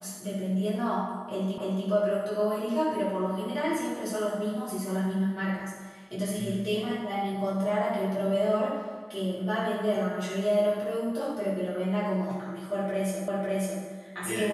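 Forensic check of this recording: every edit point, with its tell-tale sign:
0:01.58: the same again, the last 0.29 s
0:13.28: the same again, the last 0.55 s

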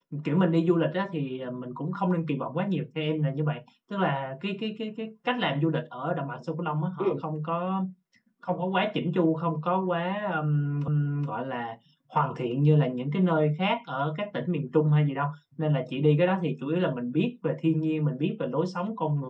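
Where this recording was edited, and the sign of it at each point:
0:10.88: the same again, the last 0.42 s

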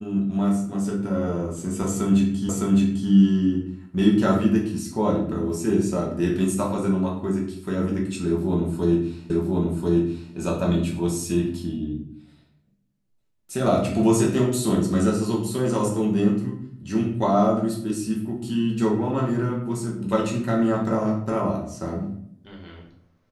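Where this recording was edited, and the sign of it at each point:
0:02.49: the same again, the last 0.61 s
0:09.30: the same again, the last 1.04 s

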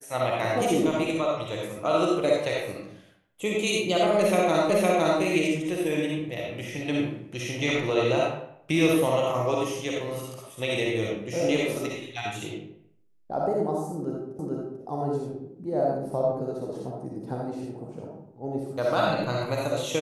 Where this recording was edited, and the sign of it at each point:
0:04.70: the same again, the last 0.51 s
0:14.39: the same again, the last 0.44 s

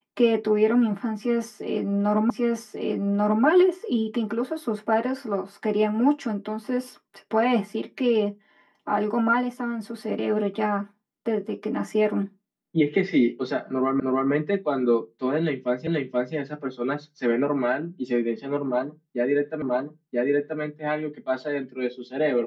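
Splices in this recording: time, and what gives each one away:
0:02.30: the same again, the last 1.14 s
0:14.00: the same again, the last 0.31 s
0:15.87: the same again, the last 0.48 s
0:19.62: the same again, the last 0.98 s

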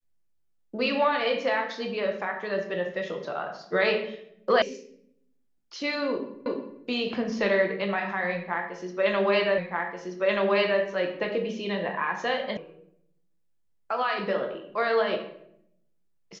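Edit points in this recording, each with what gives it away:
0:04.62: cut off before it has died away
0:06.46: the same again, the last 0.36 s
0:09.58: the same again, the last 1.23 s
0:12.57: cut off before it has died away

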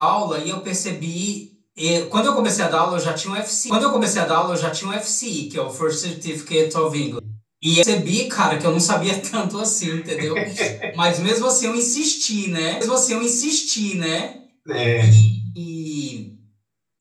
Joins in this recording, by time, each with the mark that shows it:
0:03.70: the same again, the last 1.57 s
0:07.19: cut off before it has died away
0:07.83: cut off before it has died away
0:12.81: the same again, the last 1.47 s

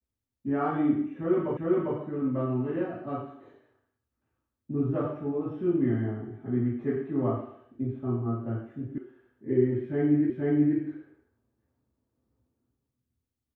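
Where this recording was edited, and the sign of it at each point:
0:01.57: the same again, the last 0.4 s
0:08.98: cut off before it has died away
0:10.30: the same again, the last 0.48 s

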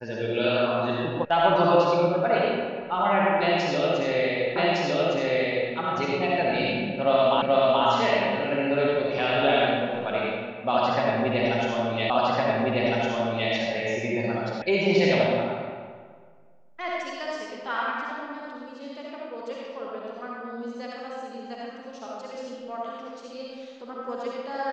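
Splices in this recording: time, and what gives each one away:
0:01.25: cut off before it has died away
0:04.56: the same again, the last 1.16 s
0:07.42: the same again, the last 0.43 s
0:12.10: the same again, the last 1.41 s
0:14.62: cut off before it has died away

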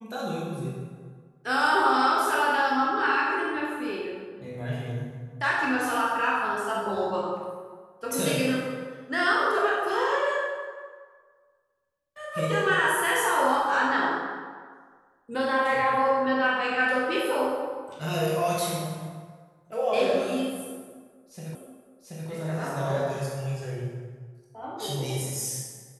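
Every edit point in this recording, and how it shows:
0:21.55: the same again, the last 0.73 s

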